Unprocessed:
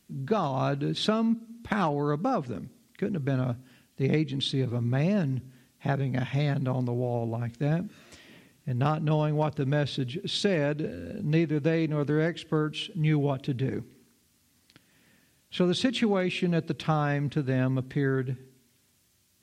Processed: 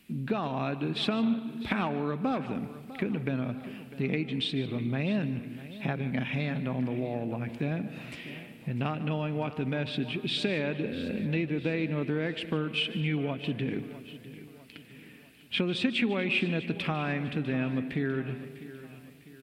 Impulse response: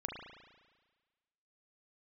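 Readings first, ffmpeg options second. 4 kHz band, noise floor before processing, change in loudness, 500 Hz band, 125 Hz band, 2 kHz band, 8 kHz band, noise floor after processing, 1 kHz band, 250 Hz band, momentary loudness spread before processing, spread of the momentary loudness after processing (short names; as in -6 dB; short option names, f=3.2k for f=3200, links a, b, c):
+0.5 dB, -67 dBFS, -3.0 dB, -4.5 dB, -5.5 dB, +1.5 dB, n/a, -51 dBFS, -4.5 dB, -1.5 dB, 8 LU, 14 LU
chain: -filter_complex "[0:a]acompressor=threshold=-36dB:ratio=2.5,equalizer=f=100:t=o:w=0.67:g=-5,equalizer=f=250:t=o:w=0.67:g=5,equalizer=f=2.5k:t=o:w=0.67:g=11,equalizer=f=6.3k:t=o:w=0.67:g=-10,aecho=1:1:650|1300|1950|2600:0.168|0.0789|0.0371|0.0174,asplit=2[a][b];[1:a]atrim=start_sample=2205,adelay=149[c];[b][c]afir=irnorm=-1:irlink=0,volume=-13.5dB[d];[a][d]amix=inputs=2:normalize=0,volume=3.5dB"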